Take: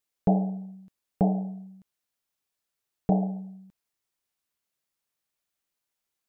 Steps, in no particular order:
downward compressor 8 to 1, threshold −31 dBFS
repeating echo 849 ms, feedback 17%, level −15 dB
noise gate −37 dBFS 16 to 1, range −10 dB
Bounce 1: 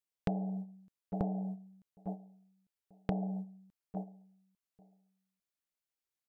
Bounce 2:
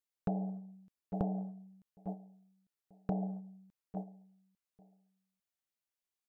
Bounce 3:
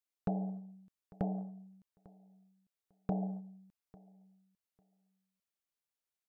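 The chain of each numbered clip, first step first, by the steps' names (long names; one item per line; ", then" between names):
repeating echo, then noise gate, then downward compressor
repeating echo, then downward compressor, then noise gate
downward compressor, then repeating echo, then noise gate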